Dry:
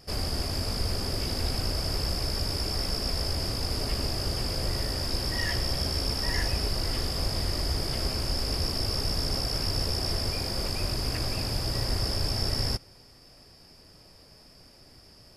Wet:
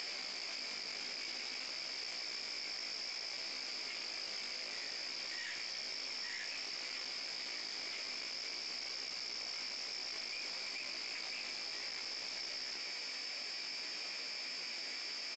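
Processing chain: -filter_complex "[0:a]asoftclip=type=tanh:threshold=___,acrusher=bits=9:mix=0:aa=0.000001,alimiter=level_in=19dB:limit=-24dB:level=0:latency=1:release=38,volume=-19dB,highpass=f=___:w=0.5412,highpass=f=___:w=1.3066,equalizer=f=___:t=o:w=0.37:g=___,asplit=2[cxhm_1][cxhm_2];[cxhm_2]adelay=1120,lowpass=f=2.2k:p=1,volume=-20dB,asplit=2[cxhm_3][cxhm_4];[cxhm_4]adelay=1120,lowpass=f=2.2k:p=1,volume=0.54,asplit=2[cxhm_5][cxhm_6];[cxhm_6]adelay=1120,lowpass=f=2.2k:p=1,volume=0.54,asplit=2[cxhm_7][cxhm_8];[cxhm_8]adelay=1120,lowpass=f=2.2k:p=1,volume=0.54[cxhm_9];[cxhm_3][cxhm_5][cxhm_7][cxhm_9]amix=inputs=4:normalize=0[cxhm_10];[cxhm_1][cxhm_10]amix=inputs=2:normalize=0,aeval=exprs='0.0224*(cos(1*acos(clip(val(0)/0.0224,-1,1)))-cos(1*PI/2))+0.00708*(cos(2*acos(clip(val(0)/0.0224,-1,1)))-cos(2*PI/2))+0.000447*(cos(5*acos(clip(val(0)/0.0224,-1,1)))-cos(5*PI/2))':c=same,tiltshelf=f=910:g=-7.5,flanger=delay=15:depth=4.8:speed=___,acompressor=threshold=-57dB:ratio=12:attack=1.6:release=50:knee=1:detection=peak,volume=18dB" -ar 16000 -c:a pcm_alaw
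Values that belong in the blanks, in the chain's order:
-31dB, 230, 230, 2.3k, 13.5, 0.56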